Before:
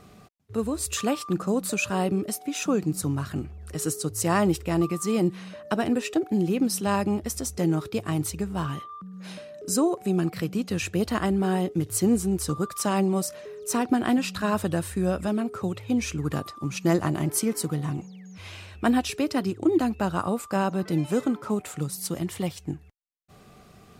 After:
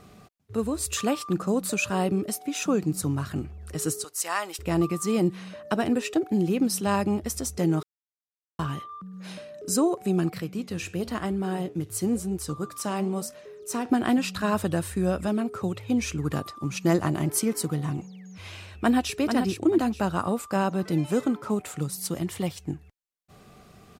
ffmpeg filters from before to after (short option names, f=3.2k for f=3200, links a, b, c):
-filter_complex "[0:a]asettb=1/sr,asplit=3[a][b][c];[a]atrim=end=4.044[d];[b]atrim=start=4.04:end=4.59,asetpts=PTS-STARTPTS,afade=t=in:d=0.004:c=qsin,afade=t=out:st=0.546:d=0.004:c=qsin,highpass=990[e];[c]atrim=start=4.586[f];[d][e]acrossfade=d=0.004:c1=hsin:c2=qsin[g];[g][f]acrossfade=d=0.004:c1=qsin:c2=hsin,asettb=1/sr,asplit=3[h][i][j];[h]atrim=end=10.384[k];[i]atrim=start=10.38:end=13.91,asetpts=PTS-STARTPTS,afade=t=in:d=0.004:c=qsin,afade=t=out:st=3.526:d=0.004:c=qsin,flanger=delay=5.7:depth=7.8:regen=-83:speed=1:shape=sinusoidal[l];[j]atrim=start=13.906[m];[k][l]acrossfade=d=0.004:c1=hsin:c2=qsin[n];[n][m]acrossfade=d=0.004:c1=qsin:c2=hsin,asplit=2[o][p];[p]afade=t=in:st=18.73:d=0.01,afade=t=out:st=19.15:d=0.01,aecho=0:1:440|880|1320|1760:0.473151|0.141945|0.0425836|0.0127751[q];[o][q]amix=inputs=2:normalize=0,asplit=3[r][s][t];[r]atrim=end=7.83,asetpts=PTS-STARTPTS,afade=t=out:st=7.826:d=0.004:c=hsin[u];[s]atrim=start=7.83:end=8.59,asetpts=PTS-STARTPTS,volume=0[v];[t]atrim=start=8.59,asetpts=PTS-STARTPTS,afade=t=in:d=0.004:c=hsin[w];[u][v][w]concat=n=3:v=0:a=1"